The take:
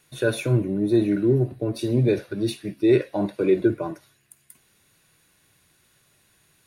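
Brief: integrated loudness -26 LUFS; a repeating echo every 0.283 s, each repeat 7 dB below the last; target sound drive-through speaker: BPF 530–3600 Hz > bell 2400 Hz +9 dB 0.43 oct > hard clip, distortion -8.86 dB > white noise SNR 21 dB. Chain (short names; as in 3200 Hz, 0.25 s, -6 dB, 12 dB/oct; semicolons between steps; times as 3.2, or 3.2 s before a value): BPF 530–3600 Hz; bell 2400 Hz +9 dB 0.43 oct; feedback echo 0.283 s, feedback 45%, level -7 dB; hard clip -26 dBFS; white noise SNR 21 dB; gain +6 dB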